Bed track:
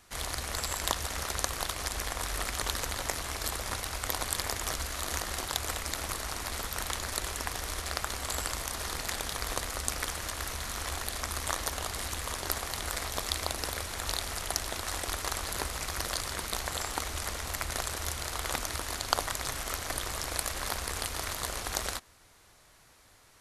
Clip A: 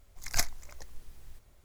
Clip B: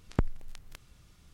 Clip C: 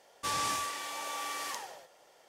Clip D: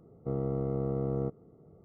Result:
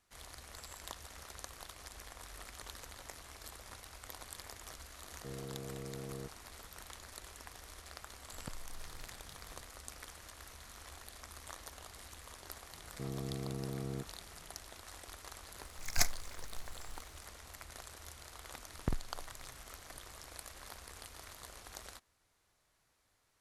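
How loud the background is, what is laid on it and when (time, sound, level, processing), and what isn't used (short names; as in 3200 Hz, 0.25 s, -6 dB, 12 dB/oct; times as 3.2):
bed track -16.5 dB
4.98 add D -13.5 dB
8.29 add B -1.5 dB + compressor, threshold -40 dBFS
12.73 add D -7.5 dB + bell 520 Hz -9.5 dB 0.45 oct
15.62 add A -1.5 dB
18.69 add B -8 dB + doubler 48 ms -5.5 dB
not used: C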